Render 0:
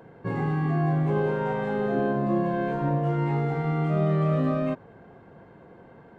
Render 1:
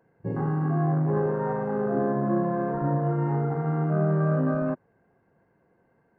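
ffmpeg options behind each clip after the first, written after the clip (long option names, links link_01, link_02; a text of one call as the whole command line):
ffmpeg -i in.wav -af "afwtdn=0.0355,superequalizer=11b=1.41:13b=0.316" out.wav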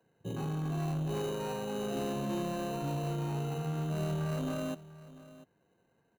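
ffmpeg -i in.wav -filter_complex "[0:a]acrossover=split=100|240|870[link_01][link_02][link_03][link_04];[link_03]acrusher=samples=13:mix=1:aa=0.000001[link_05];[link_01][link_02][link_05][link_04]amix=inputs=4:normalize=0,asoftclip=type=tanh:threshold=-22.5dB,aecho=1:1:694:0.126,volume=-6.5dB" out.wav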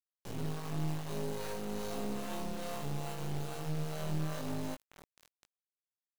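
ffmpeg -i in.wav -filter_complex "[0:a]acrossover=split=420[link_01][link_02];[link_01]aeval=exprs='val(0)*(1-0.7/2+0.7/2*cos(2*PI*2.4*n/s))':channel_layout=same[link_03];[link_02]aeval=exprs='val(0)*(1-0.7/2-0.7/2*cos(2*PI*2.4*n/s))':channel_layout=same[link_04];[link_03][link_04]amix=inputs=2:normalize=0,acrusher=bits=5:dc=4:mix=0:aa=0.000001,asplit=2[link_05][link_06];[link_06]adelay=19,volume=-5dB[link_07];[link_05][link_07]amix=inputs=2:normalize=0,volume=1.5dB" out.wav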